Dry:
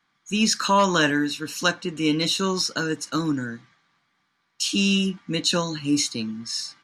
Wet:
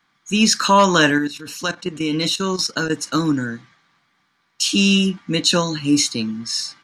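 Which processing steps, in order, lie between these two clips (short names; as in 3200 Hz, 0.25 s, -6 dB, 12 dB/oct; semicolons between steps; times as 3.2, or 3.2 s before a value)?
1.18–2.9 level quantiser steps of 13 dB; gain +5.5 dB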